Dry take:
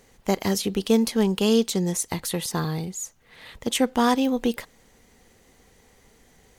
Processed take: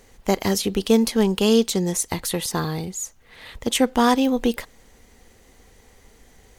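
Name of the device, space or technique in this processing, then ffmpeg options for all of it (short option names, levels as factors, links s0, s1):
low shelf boost with a cut just above: -af "lowshelf=f=99:g=6.5,equalizer=f=150:t=o:w=0.86:g=-5,volume=1.41"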